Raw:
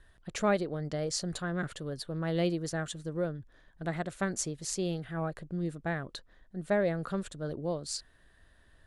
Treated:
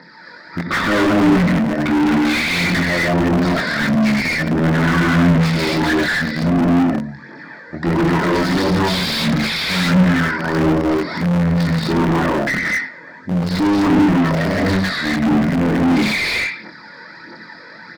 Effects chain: HPF 290 Hz 24 dB/oct; wide varispeed 0.493×; dynamic EQ 3900 Hz, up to -7 dB, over -52 dBFS, Q 0.91; fixed phaser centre 2900 Hz, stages 6; on a send: feedback echo 0.104 s, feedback 27%, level -19 dB; on the sum: non-linear reverb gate 0.29 s rising, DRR -4.5 dB; phaser 1.5 Hz, delay 2.1 ms, feedback 57%; doubler 23 ms -5 dB; in parallel at -6 dB: bit-crush 6-bit; on the sum: overdrive pedal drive 33 dB, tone 2200 Hz, clips at -13.5 dBFS; gain +5 dB

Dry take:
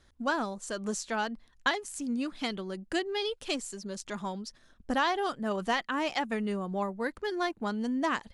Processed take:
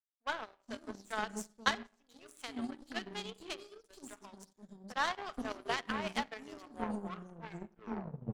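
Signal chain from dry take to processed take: tape stop at the end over 1.68 s; three bands offset in time mids, highs, lows 0.43/0.48 s, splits 420/4800 Hz; reverb RT60 1.0 s, pre-delay 5 ms, DRR 6.5 dB; power-law curve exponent 2; gain +3.5 dB

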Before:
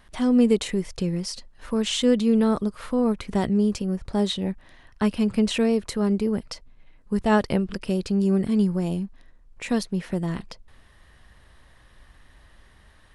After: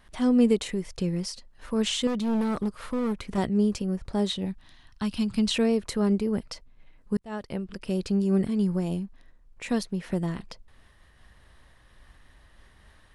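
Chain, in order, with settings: 2.07–3.38 hard clip -21 dBFS, distortion -14 dB; 4.45–5.55 graphic EQ 500/2000/4000 Hz -12/-5/+6 dB; 7.17–8.16 fade in; noise-modulated level, depth 50%

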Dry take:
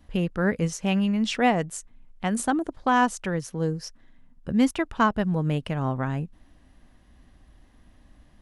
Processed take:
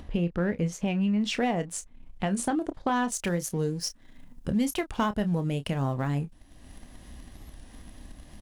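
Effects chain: sample leveller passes 1; bell 1400 Hz -3.5 dB 0.97 oct; upward compressor, threshold -34 dBFS; high shelf 5600 Hz -11.5 dB, from 1.21 s -3 dB, from 3.12 s +9.5 dB; compressor 3:1, threshold -26 dBFS, peak gain reduction 9.5 dB; doubler 29 ms -11.5 dB; record warp 45 rpm, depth 100 cents

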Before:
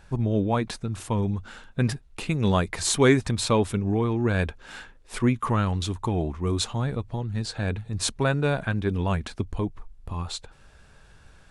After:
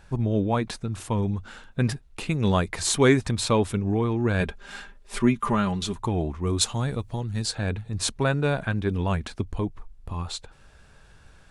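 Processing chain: 4.4–6 comb 5 ms, depth 67%; 6.61–7.55 high shelf 5000 Hz +11.5 dB

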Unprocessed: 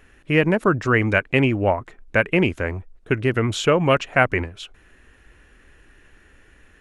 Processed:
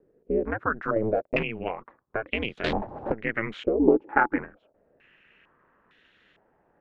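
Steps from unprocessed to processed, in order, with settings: HPF 150 Hz 12 dB/oct; 0.96–1.43 sample leveller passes 3; compressor 10:1, threshold -17 dBFS, peak gain reduction 10.5 dB; 2.64–3.12 power-law curve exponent 0.35; ring modulator 110 Hz; 3.79–4.38 small resonant body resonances 310/850 Hz, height 17 dB, ringing for 45 ms; stepped low-pass 2.2 Hz 450–3600 Hz; gain -6 dB

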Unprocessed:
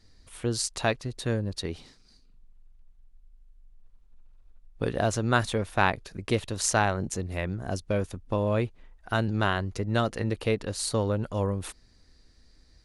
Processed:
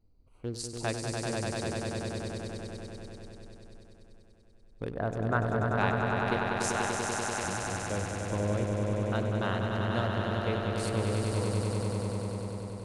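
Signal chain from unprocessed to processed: Wiener smoothing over 25 samples; 4.91–5.61 resonant high shelf 2300 Hz -12.5 dB, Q 1.5; 6.36–7.44 HPF 800 Hz 12 dB/oct; swelling echo 97 ms, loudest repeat 5, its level -5 dB; gain -7.5 dB

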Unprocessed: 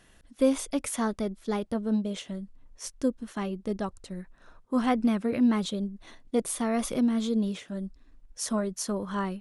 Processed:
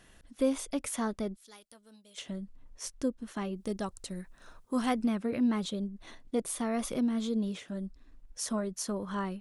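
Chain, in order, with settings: 3.56–5.05 high shelf 4400 Hz +11.5 dB; in parallel at 0 dB: compressor, threshold -38 dBFS, peak gain reduction 19 dB; 1.36–2.18 on the sum: pre-emphasis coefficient 0.97; gain -6 dB

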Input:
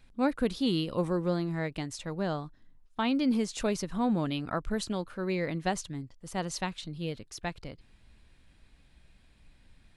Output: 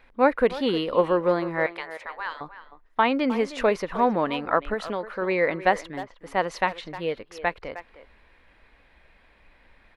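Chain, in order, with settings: 1.66–2.41 spectral gate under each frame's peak -15 dB weak; graphic EQ 125/500/1000/2000/8000 Hz -8/+10/+9/+11/-10 dB; 4.73–5.22 compressor, threshold -25 dBFS, peak gain reduction 5.5 dB; speakerphone echo 0.31 s, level -13 dB

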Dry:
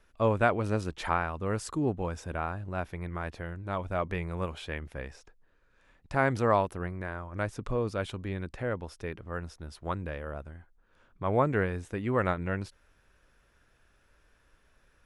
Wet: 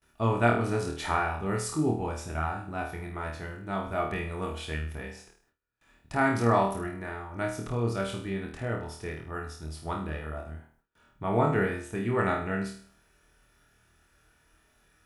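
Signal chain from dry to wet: high shelf 8400 Hz +11 dB; notch comb 530 Hz; on a send: flutter echo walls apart 4.4 m, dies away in 0.49 s; on the sum: gate with hold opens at -56 dBFS

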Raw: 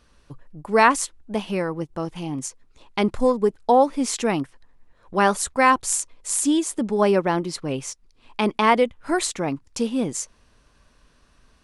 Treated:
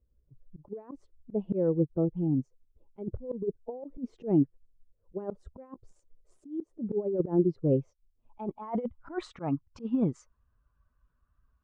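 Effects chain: per-bin expansion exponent 1.5; wow and flutter 25 cents; negative-ratio compressor -26 dBFS, ratio -0.5; low-pass sweep 460 Hz -> 1200 Hz, 7.52–9.3; auto swell 0.161 s

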